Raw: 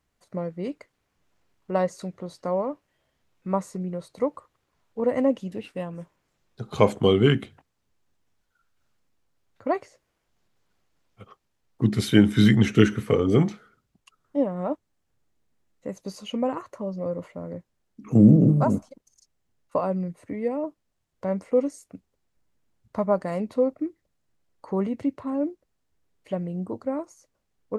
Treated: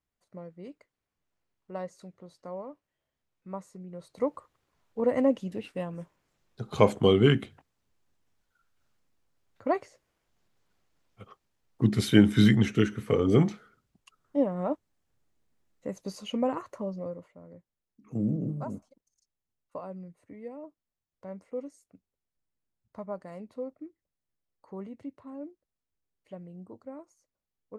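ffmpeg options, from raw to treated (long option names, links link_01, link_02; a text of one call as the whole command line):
ffmpeg -i in.wav -af "volume=5dB,afade=type=in:start_time=3.88:duration=0.45:silence=0.281838,afade=type=out:start_time=12.38:duration=0.53:silence=0.446684,afade=type=in:start_time=12.91:duration=0.35:silence=0.446684,afade=type=out:start_time=16.8:duration=0.45:silence=0.237137" out.wav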